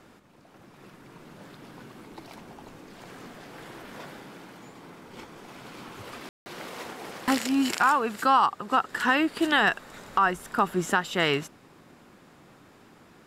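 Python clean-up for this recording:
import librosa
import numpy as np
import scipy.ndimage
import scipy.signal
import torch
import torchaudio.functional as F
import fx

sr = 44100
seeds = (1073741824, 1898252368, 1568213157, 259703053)

y = fx.fix_ambience(x, sr, seeds[0], print_start_s=0.04, print_end_s=0.54, start_s=6.29, end_s=6.46)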